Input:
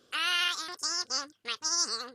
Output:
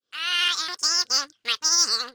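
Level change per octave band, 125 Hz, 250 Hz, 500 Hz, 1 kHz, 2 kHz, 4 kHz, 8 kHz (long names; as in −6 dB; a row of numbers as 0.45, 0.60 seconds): can't be measured, +2.5 dB, +3.0 dB, +4.0 dB, +5.0 dB, +8.5 dB, +8.5 dB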